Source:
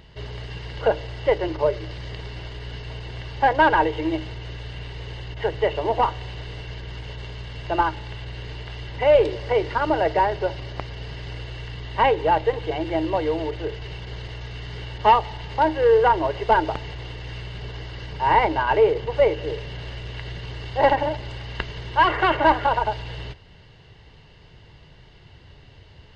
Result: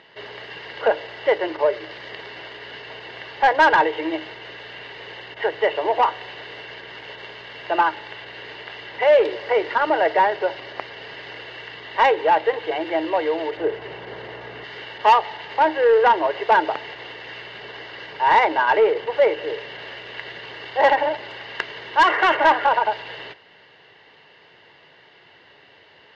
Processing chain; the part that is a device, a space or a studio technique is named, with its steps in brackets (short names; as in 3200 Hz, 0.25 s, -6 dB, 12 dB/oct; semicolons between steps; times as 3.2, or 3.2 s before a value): intercom (BPF 410–3800 Hz; bell 1800 Hz +5 dB 0.4 oct; soft clip -11.5 dBFS, distortion -17 dB); 13.57–14.64 tilt shelf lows +7 dB, about 1500 Hz; gain +4 dB